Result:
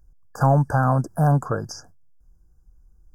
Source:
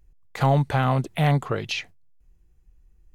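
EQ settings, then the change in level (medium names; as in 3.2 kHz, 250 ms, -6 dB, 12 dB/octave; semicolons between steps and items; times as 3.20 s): brick-wall FIR band-stop 1.7–4.7 kHz; peaking EQ 390 Hz -8 dB 0.23 oct; +2.5 dB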